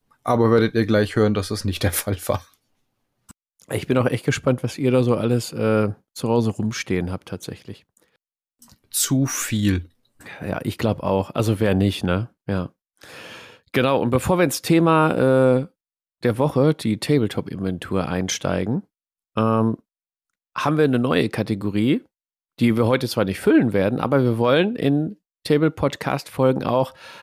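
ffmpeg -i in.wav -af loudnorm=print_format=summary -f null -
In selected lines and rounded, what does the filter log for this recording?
Input Integrated:    -21.1 LUFS
Input True Peak:      -6.7 dBTP
Input LRA:             4.6 LU
Input Threshold:     -31.8 LUFS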